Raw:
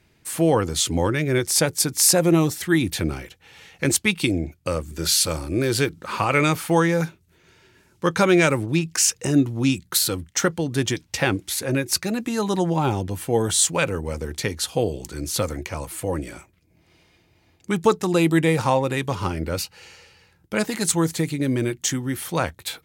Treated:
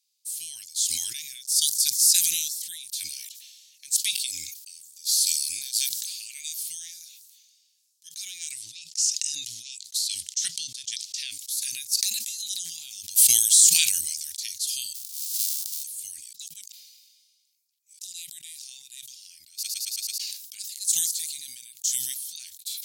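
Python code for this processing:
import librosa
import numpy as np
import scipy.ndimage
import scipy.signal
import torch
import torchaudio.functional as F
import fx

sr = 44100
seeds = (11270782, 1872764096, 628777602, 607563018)

y = fx.spec_erase(x, sr, start_s=1.48, length_s=0.35, low_hz=410.0, high_hz=2900.0)
y = fx.high_shelf(y, sr, hz=4500.0, db=5.5, at=(5.73, 6.63))
y = fx.lowpass(y, sr, hz=7400.0, slope=12, at=(8.51, 11.31))
y = fx.env_flatten(y, sr, amount_pct=100, at=(12.38, 13.9), fade=0.02)
y = fx.envelope_flatten(y, sr, power=0.1, at=(14.94, 15.82), fade=0.02)
y = fx.edit(y, sr, fx.reverse_span(start_s=16.33, length_s=1.66),
    fx.stutter_over(start_s=19.52, slice_s=0.11, count=6), tone=tone)
y = scipy.signal.sosfilt(scipy.signal.cheby2(4, 60, 1300.0, 'highpass', fs=sr, output='sos'), y)
y = fx.sustainer(y, sr, db_per_s=34.0)
y = F.gain(torch.from_numpy(y), -2.0).numpy()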